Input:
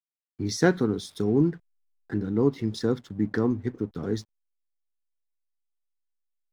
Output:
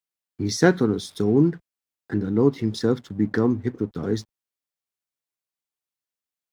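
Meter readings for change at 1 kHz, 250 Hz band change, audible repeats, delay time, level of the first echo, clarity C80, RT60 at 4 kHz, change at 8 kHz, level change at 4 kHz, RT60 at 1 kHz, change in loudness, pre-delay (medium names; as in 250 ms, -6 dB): +4.0 dB, +4.0 dB, no echo, no echo, no echo, no reverb, no reverb, no reading, +4.0 dB, no reverb, +4.0 dB, no reverb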